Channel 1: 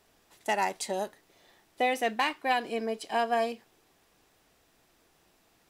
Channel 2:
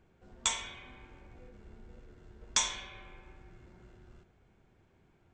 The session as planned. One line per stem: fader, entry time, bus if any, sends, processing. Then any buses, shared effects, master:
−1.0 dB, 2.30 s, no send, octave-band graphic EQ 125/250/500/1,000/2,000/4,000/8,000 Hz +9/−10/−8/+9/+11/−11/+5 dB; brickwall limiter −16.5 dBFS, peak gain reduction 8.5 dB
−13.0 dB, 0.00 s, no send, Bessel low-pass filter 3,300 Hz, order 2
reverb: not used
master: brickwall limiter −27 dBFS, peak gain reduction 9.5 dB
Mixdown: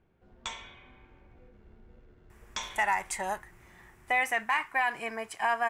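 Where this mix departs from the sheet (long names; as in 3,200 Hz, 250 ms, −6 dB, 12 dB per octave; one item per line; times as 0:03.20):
stem 2 −13.0 dB → −3.0 dB
master: missing brickwall limiter −27 dBFS, peak gain reduction 9.5 dB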